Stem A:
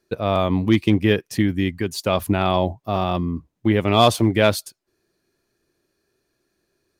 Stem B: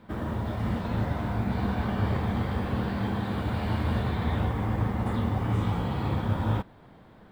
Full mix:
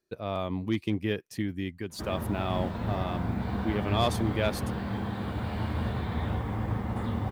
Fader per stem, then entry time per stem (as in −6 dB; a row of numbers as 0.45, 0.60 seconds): −12.0, −3.5 decibels; 0.00, 1.90 seconds